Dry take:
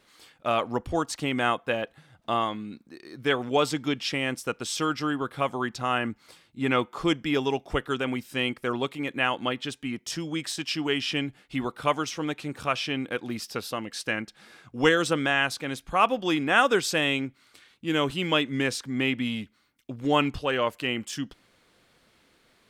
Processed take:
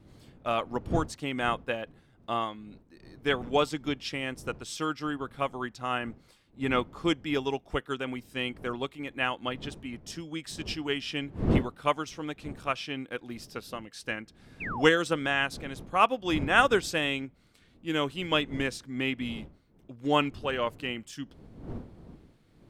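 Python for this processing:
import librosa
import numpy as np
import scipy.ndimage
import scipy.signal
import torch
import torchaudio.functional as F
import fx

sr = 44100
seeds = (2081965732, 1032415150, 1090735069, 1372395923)

y = fx.dmg_wind(x, sr, seeds[0], corner_hz=240.0, level_db=-38.0)
y = fx.spec_paint(y, sr, seeds[1], shape='fall', start_s=14.6, length_s=0.23, low_hz=590.0, high_hz=2800.0, level_db=-30.0)
y = fx.upward_expand(y, sr, threshold_db=-35.0, expansion=1.5)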